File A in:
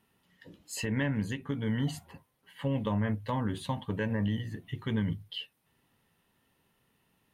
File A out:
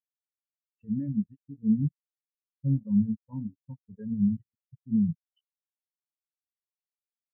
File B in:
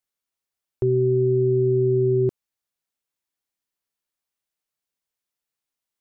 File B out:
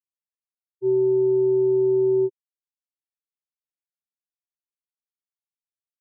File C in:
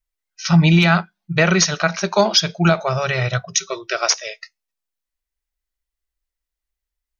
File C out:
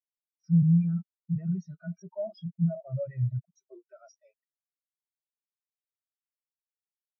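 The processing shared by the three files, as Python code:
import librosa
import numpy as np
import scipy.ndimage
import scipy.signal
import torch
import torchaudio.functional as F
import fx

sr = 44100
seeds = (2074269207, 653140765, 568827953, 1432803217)

y = fx.fuzz(x, sr, gain_db=39.0, gate_db=-34.0)
y = fx.spectral_expand(y, sr, expansion=4.0)
y = y * librosa.db_to_amplitude(-4.0)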